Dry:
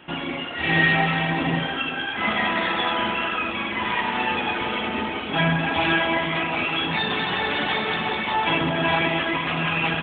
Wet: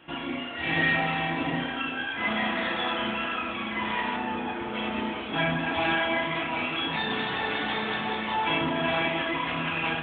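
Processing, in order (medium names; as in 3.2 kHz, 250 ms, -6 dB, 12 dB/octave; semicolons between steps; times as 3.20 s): 4.16–4.75 s: treble shelf 2.1 kHz -11.5 dB; flutter echo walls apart 5.5 m, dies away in 0.24 s; on a send at -6 dB: reverberation RT60 0.45 s, pre-delay 3 ms; on the sum: trim -6.5 dB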